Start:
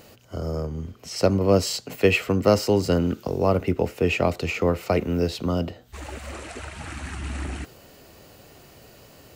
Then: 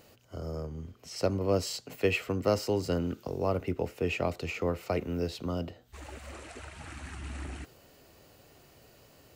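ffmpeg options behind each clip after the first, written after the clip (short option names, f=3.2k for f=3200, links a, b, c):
-af "equalizer=f=200:w=7.1:g=-4,volume=-8.5dB"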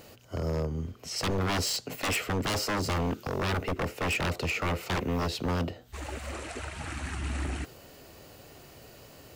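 -af "aeval=exprs='0.0299*(abs(mod(val(0)/0.0299+3,4)-2)-1)':c=same,volume=7dB"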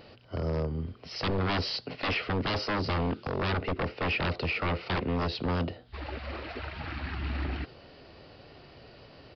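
-af "aresample=11025,aresample=44100"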